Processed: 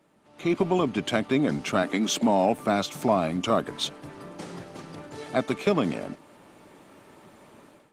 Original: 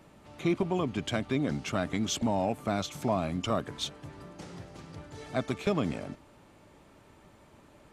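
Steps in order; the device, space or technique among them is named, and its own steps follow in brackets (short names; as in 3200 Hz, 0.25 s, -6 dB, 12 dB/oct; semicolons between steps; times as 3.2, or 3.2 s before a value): 1.82–2.92 HPF 230 Hz -> 65 Hz 24 dB/oct; video call (HPF 180 Hz 12 dB/oct; AGC gain up to 14.5 dB; gain -6 dB; Opus 32 kbps 48000 Hz)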